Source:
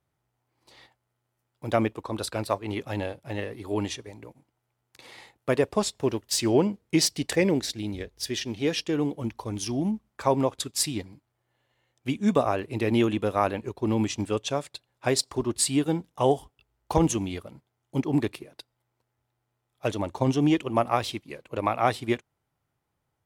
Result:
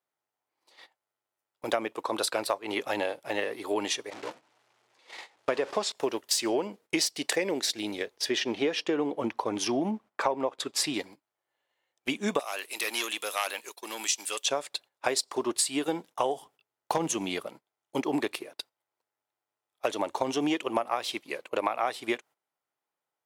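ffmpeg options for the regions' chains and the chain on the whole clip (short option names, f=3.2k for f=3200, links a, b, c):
-filter_complex "[0:a]asettb=1/sr,asplit=3[a][b][c];[a]atrim=end=4.104[d];[b]atrim=start=4.1:end=5.92,asetpts=PTS-STARTPTS,afade=t=in:d=0.004:c=qsin,afade=t=out:st=1.816:d=0.004:c=qsin,aeval=exprs='val(0)+0.5*0.0188*sgn(val(0))':c=same,lowpass=6k,agate=range=-17dB:threshold=-38dB:ratio=16:release=100:detection=peak[e];[c]atrim=start=5.916[f];[d][e]acrossfade=d=0.004:c1=hsin:c2=qsin[g];[g][f]acrossfade=d=0.004:c1=qsin:c2=hsin,asettb=1/sr,asplit=3[h][i][j];[h]atrim=end=8.174[k];[i]atrim=start=8.17:end=10.94,asetpts=PTS-STARTPTS,afade=t=in:d=0.004:c=qsin,afade=t=out:st=2.766:d=0.004:c=qsin,lowpass=f=1.8k:p=1,acontrast=21[l];[j]atrim=start=10.936[m];[k][l]acrossfade=d=0.004:c1=hsin:c2=qsin[n];[n][m]acrossfade=d=0.004:c1=qsin:c2=hsin,asettb=1/sr,asplit=3[o][p][q];[o]atrim=end=12.394[r];[p]atrim=start=12.39:end=14.46,asetpts=PTS-STARTPTS,afade=t=in:d=0.004:c=qsin,afade=t=out:st=2.066:d=0.004:c=qsin,aeval=exprs='0.398*sin(PI/2*1.78*val(0)/0.398)':c=same,aderivative[s];[q]atrim=start=14.456[t];[r][s]acrossfade=d=0.004:c1=hsin:c2=qsin[u];[u][t]acrossfade=d=0.004:c1=qsin:c2=hsin,asettb=1/sr,asplit=3[v][w][x];[v]atrim=end=16.354[y];[w]atrim=start=16.35:end=17.47,asetpts=PTS-STARTPTS,afade=t=in:d=0.004:c=qsin,afade=t=out:st=1.116:d=0.004:c=qsin,equalizer=f=150:w=1.7:g=8,asoftclip=type=hard:threshold=-10dB[z];[x]atrim=start=17.466[aa];[y][z]acrossfade=d=0.004:c1=hsin:c2=qsin[ab];[ab][aa]acrossfade=d=0.004:c1=qsin:c2=hsin,highpass=450,agate=range=-13dB:threshold=-52dB:ratio=16:detection=peak,acompressor=threshold=-31dB:ratio=10,volume=7dB"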